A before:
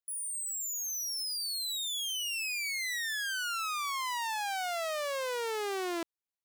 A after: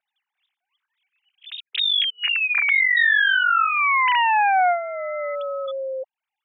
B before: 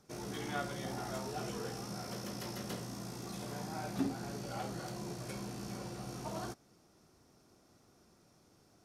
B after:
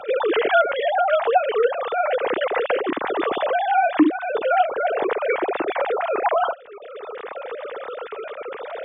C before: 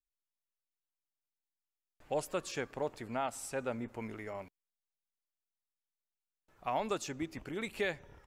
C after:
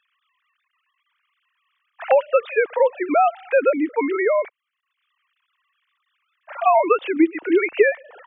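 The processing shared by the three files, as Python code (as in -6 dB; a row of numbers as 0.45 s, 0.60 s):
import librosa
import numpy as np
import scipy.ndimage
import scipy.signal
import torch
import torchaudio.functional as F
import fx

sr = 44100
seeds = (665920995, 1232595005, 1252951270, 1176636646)

y = fx.sine_speech(x, sr)
y = fx.band_squash(y, sr, depth_pct=70)
y = y * 10.0 ** (-22 / 20.0) / np.sqrt(np.mean(np.square(y)))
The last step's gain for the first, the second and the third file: +12.5 dB, +21.5 dB, +19.0 dB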